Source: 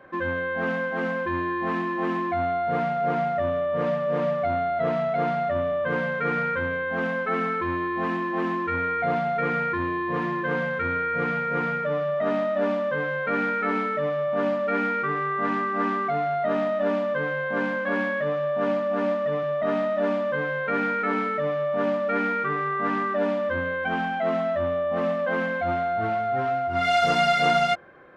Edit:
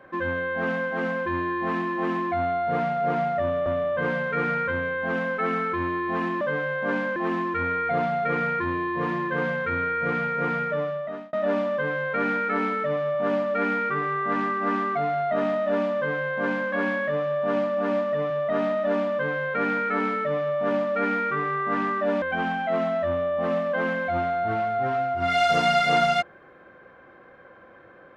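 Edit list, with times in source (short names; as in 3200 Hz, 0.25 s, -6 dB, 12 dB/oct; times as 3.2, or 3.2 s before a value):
3.66–5.54 cut
11.87–12.46 fade out
17.09–17.84 copy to 8.29
23.35–23.75 cut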